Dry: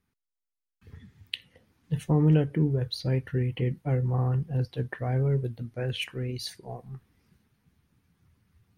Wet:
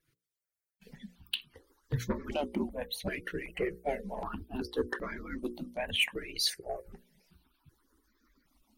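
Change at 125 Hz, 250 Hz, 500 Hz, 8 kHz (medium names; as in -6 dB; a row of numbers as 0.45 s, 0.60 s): -18.0 dB, -8.0 dB, -3.0 dB, no reading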